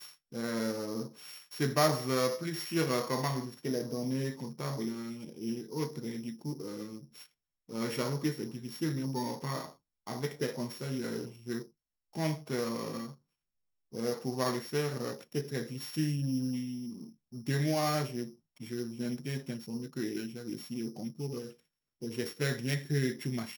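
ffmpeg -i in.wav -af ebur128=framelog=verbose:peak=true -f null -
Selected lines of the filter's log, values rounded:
Integrated loudness:
  I:         -35.1 LUFS
  Threshold: -45.5 LUFS
Loudness range:
  LRA:         6.5 LU
  Threshold: -55.8 LUFS
  LRA low:   -38.7 LUFS
  LRA high:  -32.2 LUFS
True peak:
  Peak:      -12.7 dBFS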